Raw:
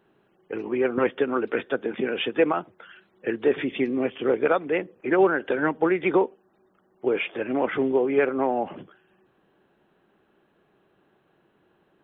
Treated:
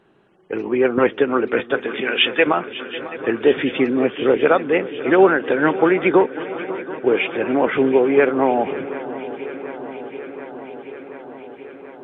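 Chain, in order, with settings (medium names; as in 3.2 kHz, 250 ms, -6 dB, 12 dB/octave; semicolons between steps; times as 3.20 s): 1.74–2.47 s: tilt shelf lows -8 dB, about 860 Hz; shuffle delay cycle 731 ms, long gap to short 3:1, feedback 73%, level -16 dB; trim +6.5 dB; Vorbis 64 kbps 22.05 kHz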